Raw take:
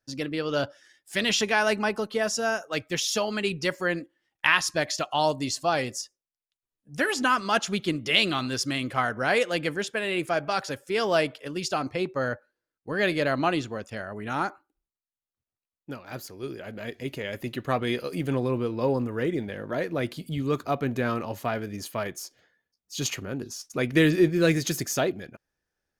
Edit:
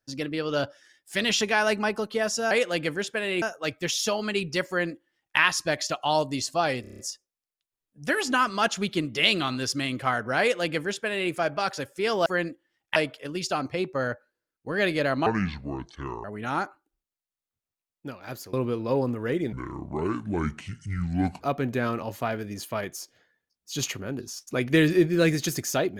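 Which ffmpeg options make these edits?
-filter_complex "[0:a]asplit=16[a][b][c][d][e][f][g][h][i][j][k][l][m][n][o][p];[a]atrim=end=2.512[q];[b]atrim=start=9.308:end=10.222[r];[c]atrim=start=2.508:end=5.932[s];[d]atrim=start=5.898:end=5.932[t];[e]atrim=start=5.898:end=5.932[u];[f]atrim=start=5.898:end=5.932[v];[g]atrim=start=5.898:end=5.932[w];[h]atrim=start=5.898:end=5.932[x];[i]atrim=start=5.898:end=11.172[y];[j]atrim=start=3.768:end=4.472[z];[k]atrim=start=11.168:end=13.474[aa];[l]atrim=start=13.47:end=14.08,asetpts=PTS-STARTPTS,asetrate=27342,aresample=44100[ab];[m]atrim=start=14.076:end=16.372[ac];[n]atrim=start=18.458:end=19.454[ad];[o]atrim=start=19.45:end=20.64,asetpts=PTS-STARTPTS,asetrate=27783,aresample=44100[ae];[p]atrim=start=20.636[af];[q][r]acrossfade=d=0.004:c1=hsin:c2=hsin[ag];[ag][s]acrossfade=d=0.004:c1=hsin:c2=hsin[ah];[ah][t]acrossfade=d=0.004:c1=hsin:c2=hsin[ai];[ai][u]acrossfade=d=0.004:c1=hsin:c2=hsin[aj];[aj][v]acrossfade=d=0.004:c1=hsin:c2=hsin[ak];[ak][w]acrossfade=d=0.004:c1=hsin:c2=hsin[al];[al][x]acrossfade=d=0.004:c1=hsin:c2=hsin[am];[am][y]acrossfade=d=0.004:c1=hsin:c2=hsin[an];[an][z]acrossfade=d=0.004:c1=hsin:c2=hsin[ao];[ao][aa]acrossfade=d=0.004:c1=hsin:c2=hsin[ap];[ap][ab]acrossfade=d=0.004:c1=hsin:c2=hsin[aq];[aq][ac]acrossfade=d=0.004:c1=hsin:c2=hsin[ar];[ar][ad]acrossfade=d=0.004:c1=hsin:c2=hsin[as];[as][ae]acrossfade=d=0.004:c1=hsin:c2=hsin[at];[at][af]acrossfade=d=0.004:c1=hsin:c2=hsin"

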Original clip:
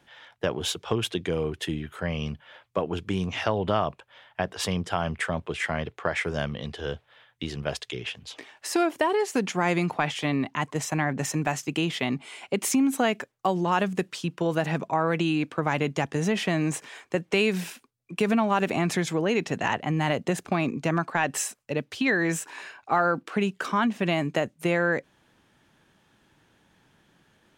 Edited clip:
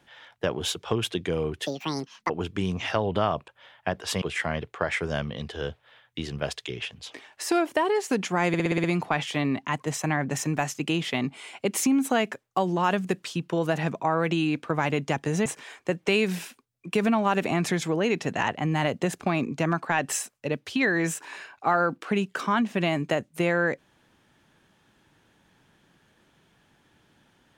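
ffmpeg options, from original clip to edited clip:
-filter_complex "[0:a]asplit=11[a][b][c][d][e][f][g][h][i][j][k];[a]atrim=end=1.664[l];[b]atrim=start=1.66:end=2.82,asetpts=PTS-STARTPTS,asetrate=80262,aresample=44100[m];[c]atrim=start=2.816:end=4.742[n];[d]atrim=start=5.458:end=9.782[o];[e]atrim=start=9.718:end=9.782[p];[f]atrim=start=9.718:end=9.782[q];[g]atrim=start=9.718:end=9.782[r];[h]atrim=start=9.718:end=9.782[s];[i]atrim=start=9.718:end=9.782[t];[j]atrim=start=9.718:end=16.342[u];[k]atrim=start=16.708[v];[l][m]acrossfade=d=0.004:c1=hsin:c2=hsin[w];[w][n]acrossfade=d=0.004:c1=hsin:c2=hsin[x];[x][o]acrossfade=d=0.004:c1=hsin:c2=hsin[y];[y][p]acrossfade=d=0.004:c1=hsin:c2=hsin[z];[z][q]acrossfade=d=0.004:c1=hsin:c2=hsin[aa];[aa][r]acrossfade=d=0.004:c1=hsin:c2=hsin[ab];[ab][s]acrossfade=d=0.004:c1=hsin:c2=hsin[ac];[ac][t]acrossfade=d=0.004:c1=hsin:c2=hsin[ad];[ad][u]acrossfade=d=0.004:c1=hsin:c2=hsin[ae];[ae][v]acrossfade=d=0.004:c1=hsin:c2=hsin"

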